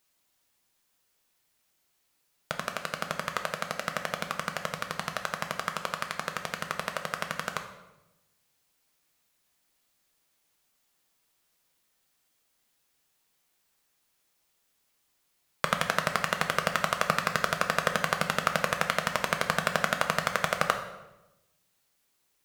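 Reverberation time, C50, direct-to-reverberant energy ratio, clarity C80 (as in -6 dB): 0.95 s, 9.0 dB, 5.0 dB, 11.0 dB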